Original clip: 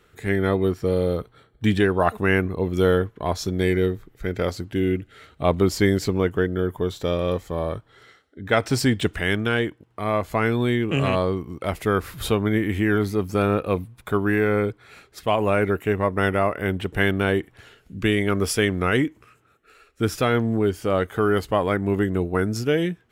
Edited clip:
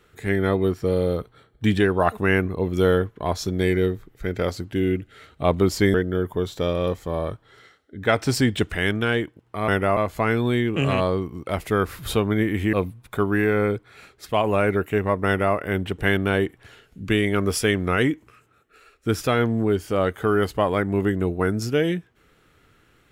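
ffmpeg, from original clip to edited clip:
-filter_complex "[0:a]asplit=5[a][b][c][d][e];[a]atrim=end=5.942[f];[b]atrim=start=6.378:end=10.122[g];[c]atrim=start=16.198:end=16.492[h];[d]atrim=start=10.118:end=12.882[i];[e]atrim=start=13.668[j];[f][g]acrossfade=d=0.004:c1=hsin:c2=hsin[k];[k][h]acrossfade=d=0.004:c1=hsin:c2=hsin[l];[l][i]acrossfade=d=0.004:c1=hsin:c2=hsin[m];[m][j]acrossfade=d=0.004:c1=hsin:c2=hsin"

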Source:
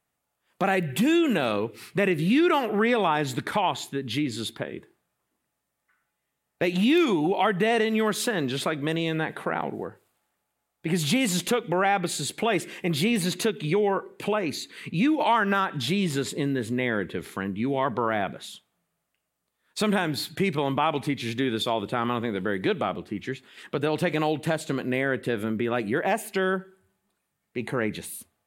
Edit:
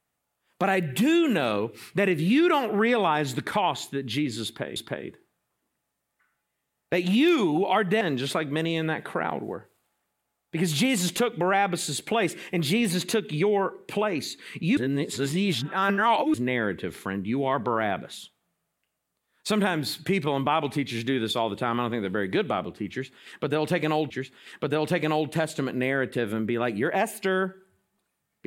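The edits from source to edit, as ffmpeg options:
-filter_complex "[0:a]asplit=6[a][b][c][d][e][f];[a]atrim=end=4.762[g];[b]atrim=start=4.448:end=7.702[h];[c]atrim=start=8.318:end=15.082[i];[d]atrim=start=15.078:end=16.652,asetpts=PTS-STARTPTS,areverse[j];[e]atrim=start=16.648:end=24.412[k];[f]atrim=start=23.208[l];[g][h]acrossfade=d=0.004:c1=hsin:c2=hsin[m];[m][i]acrossfade=d=0.004:c1=hsin:c2=hsin[n];[n][j]acrossfade=d=0.004:c1=hsin:c2=hsin[o];[o][k]acrossfade=d=0.004:c1=hsin:c2=hsin[p];[p][l]acrossfade=d=0.004:c1=hsin:c2=hsin"

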